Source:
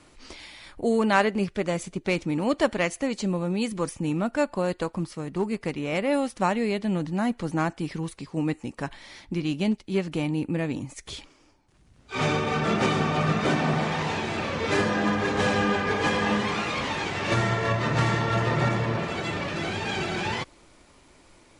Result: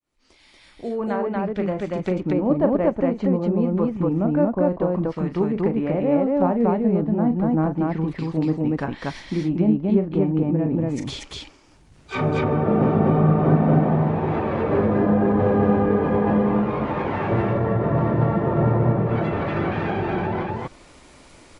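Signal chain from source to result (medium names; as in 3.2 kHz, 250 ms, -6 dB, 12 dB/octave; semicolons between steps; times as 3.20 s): fade-in on the opening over 2.60 s; low-pass that closes with the level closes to 710 Hz, closed at -24 dBFS; loudspeakers at several distances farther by 13 m -9 dB, 81 m -1 dB; trim +4.5 dB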